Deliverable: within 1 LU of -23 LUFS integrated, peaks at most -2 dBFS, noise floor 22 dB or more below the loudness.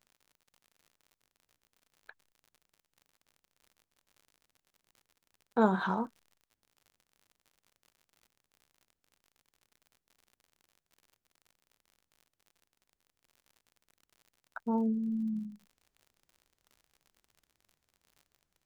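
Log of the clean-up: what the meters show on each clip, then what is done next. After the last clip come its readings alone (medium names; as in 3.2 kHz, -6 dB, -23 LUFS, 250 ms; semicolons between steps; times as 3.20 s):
tick rate 60 per s; loudness -32.5 LUFS; peak level -14.0 dBFS; loudness target -23.0 LUFS
-> de-click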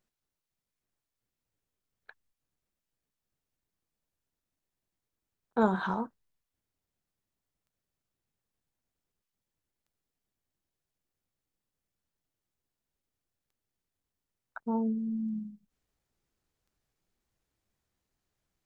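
tick rate 0.27 per s; loudness -32.5 LUFS; peak level -13.5 dBFS; loudness target -23.0 LUFS
-> trim +9.5 dB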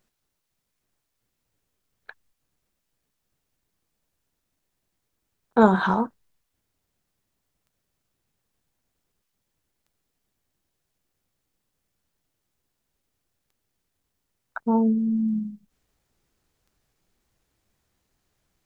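loudness -23.0 LUFS; peak level -4.0 dBFS; noise floor -79 dBFS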